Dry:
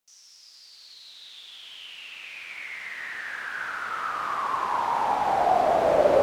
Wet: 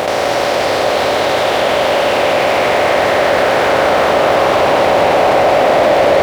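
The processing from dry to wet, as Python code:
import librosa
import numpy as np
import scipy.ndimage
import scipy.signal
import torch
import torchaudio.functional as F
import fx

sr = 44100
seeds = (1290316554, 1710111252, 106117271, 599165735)

y = fx.bin_compress(x, sr, power=0.2)
y = fx.leveller(y, sr, passes=2)
y = scipy.signal.sosfilt(scipy.signal.butter(2, 63.0, 'highpass', fs=sr, output='sos'), y)
y = fx.peak_eq(y, sr, hz=1100.0, db=-8.0, octaves=1.3)
y = y + 10.0 ** (-3.5 / 20.0) * np.pad(y, (int(179 * sr / 1000.0), 0))[:len(y)]
y = fx.env_flatten(y, sr, amount_pct=50)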